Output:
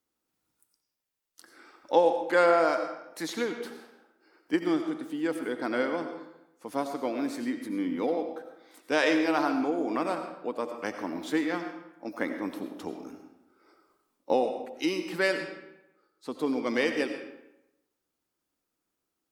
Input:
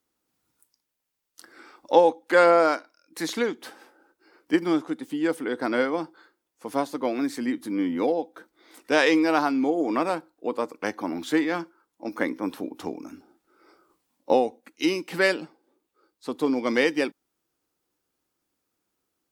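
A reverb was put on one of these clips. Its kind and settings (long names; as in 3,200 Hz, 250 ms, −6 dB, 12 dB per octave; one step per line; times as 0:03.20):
comb and all-pass reverb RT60 0.9 s, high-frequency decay 0.75×, pre-delay 50 ms, DRR 6.5 dB
level −5 dB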